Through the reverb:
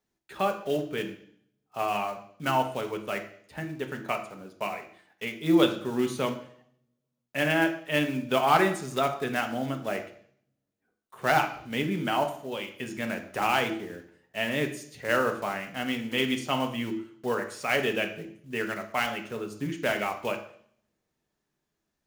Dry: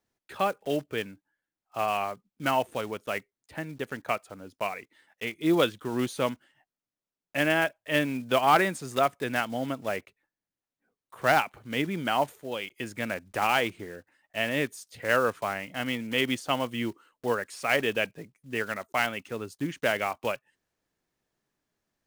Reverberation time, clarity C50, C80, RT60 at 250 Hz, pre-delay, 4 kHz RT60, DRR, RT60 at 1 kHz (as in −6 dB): 0.60 s, 10.0 dB, 13.5 dB, 0.65 s, 3 ms, 0.70 s, 4.0 dB, 0.55 s